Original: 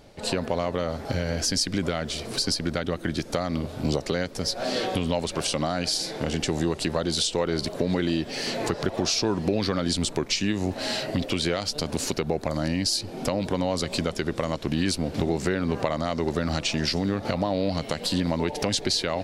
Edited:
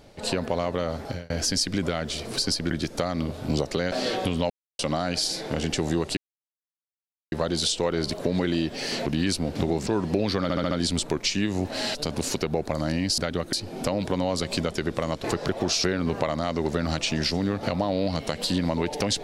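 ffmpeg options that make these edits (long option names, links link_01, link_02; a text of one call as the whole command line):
ffmpeg -i in.wav -filter_complex "[0:a]asplit=18[link_01][link_02][link_03][link_04][link_05][link_06][link_07][link_08][link_09][link_10][link_11][link_12][link_13][link_14][link_15][link_16][link_17][link_18];[link_01]atrim=end=1.3,asetpts=PTS-STARTPTS,afade=type=out:start_time=1.01:duration=0.29[link_19];[link_02]atrim=start=1.3:end=2.712,asetpts=PTS-STARTPTS,afade=type=in:duration=0.004:curve=hsin[link_20];[link_03]atrim=start=3.058:end=4.272[link_21];[link_04]atrim=start=4.618:end=5.2,asetpts=PTS-STARTPTS,afade=type=out:start_time=0.578:duration=0.004:curve=hsin[link_22];[link_05]atrim=start=5.2:end=5.49,asetpts=PTS-STARTPTS,volume=0[link_23];[link_06]atrim=start=5.49:end=6.87,asetpts=PTS-STARTPTS,afade=type=in:duration=0.004:curve=hsin,afade=type=out:start_time=1.376:duration=0.004:curve=hsin,apad=pad_dur=1.15[link_24];[link_07]atrim=start=6.87:end=8.612,asetpts=PTS-STARTPTS,afade=type=in:duration=0.004:curve=hsin[link_25];[link_08]atrim=start=14.648:end=15.462[link_26];[link_09]atrim=start=9.208:end=9.842[link_27];[link_10]atrim=start=9.768:end=9.842[link_28];[link_11]atrim=start=9.768:end=9.842[link_29];[link_12]atrim=start=9.768:end=9.842[link_30];[link_13]atrim=start=9.768:end=11.012[link_31];[link_14]atrim=start=11.708:end=12.942[link_32];[link_15]atrim=start=2.708:end=3.062[link_33];[link_16]atrim=start=12.938:end=14.652[link_34];[link_17]atrim=start=8.608:end=9.212[link_35];[link_18]atrim=start=15.458[link_36];[link_19][link_20]concat=n=2:v=0:a=1[link_37];[link_37][link_21]acrossfade=duration=0.004:curve1=hsin:curve2=hsin[link_38];[link_22][link_23][link_24][link_25]concat=n=4:v=0:a=1[link_39];[link_38][link_39]acrossfade=duration=0.004:curve1=hsin:curve2=hsin[link_40];[link_40][link_26]acrossfade=duration=0.004:curve1=hsin:curve2=hsin[link_41];[link_41][link_27]acrossfade=duration=0.004:curve1=hsin:curve2=hsin[link_42];[link_42][link_28]acrossfade=duration=0.004:curve1=hsin:curve2=hsin[link_43];[link_43][link_29]acrossfade=duration=0.004:curve1=hsin:curve2=hsin[link_44];[link_44][link_30]acrossfade=duration=0.004:curve1=hsin:curve2=hsin[link_45];[link_45][link_31]acrossfade=duration=0.004:curve1=hsin:curve2=hsin[link_46];[link_46][link_32]acrossfade=duration=0.004:curve1=hsin:curve2=hsin[link_47];[link_47][link_33]acrossfade=duration=0.004:curve1=hsin:curve2=hsin[link_48];[link_48][link_34]acrossfade=duration=0.004:curve1=hsin:curve2=hsin[link_49];[link_49][link_35]acrossfade=duration=0.004:curve1=hsin:curve2=hsin[link_50];[link_50][link_36]acrossfade=duration=0.004:curve1=hsin:curve2=hsin" out.wav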